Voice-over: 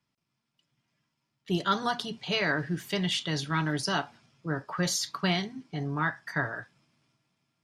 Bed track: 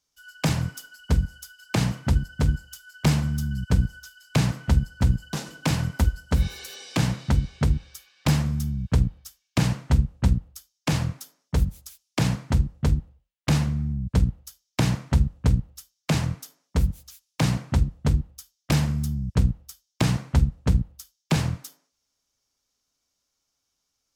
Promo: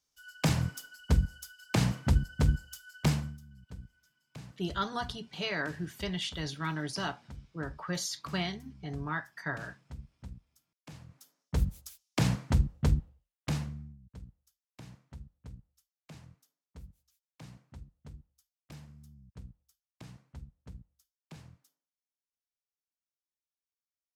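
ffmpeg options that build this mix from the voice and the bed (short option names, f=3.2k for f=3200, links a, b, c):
-filter_complex "[0:a]adelay=3100,volume=-6dB[a];[1:a]volume=17dB,afade=t=out:st=2.95:d=0.44:silence=0.0841395,afade=t=in:st=11.08:d=0.67:silence=0.0891251,afade=t=out:st=12.93:d=1.05:silence=0.0707946[b];[a][b]amix=inputs=2:normalize=0"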